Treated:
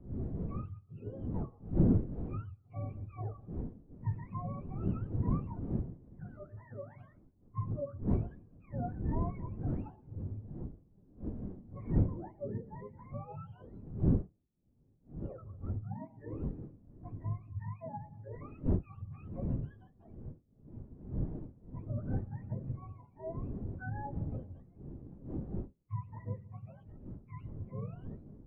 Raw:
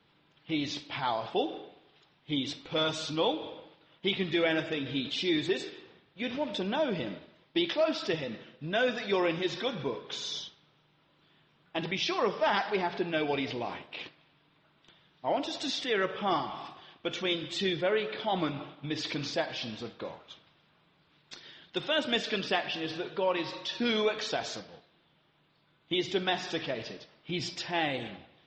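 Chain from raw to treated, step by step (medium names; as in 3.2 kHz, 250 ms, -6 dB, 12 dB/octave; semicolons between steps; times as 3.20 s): spectrum inverted on a logarithmic axis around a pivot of 600 Hz; wind noise 250 Hz -28 dBFS; spectral contrast expander 1.5:1; trim -8.5 dB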